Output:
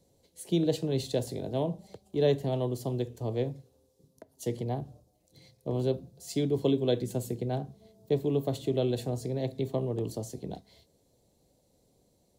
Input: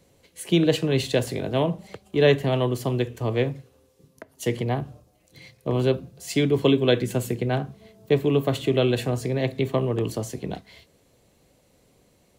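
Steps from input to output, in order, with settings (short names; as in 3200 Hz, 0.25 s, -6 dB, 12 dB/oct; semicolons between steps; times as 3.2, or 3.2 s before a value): band shelf 1800 Hz -11 dB; gain -7 dB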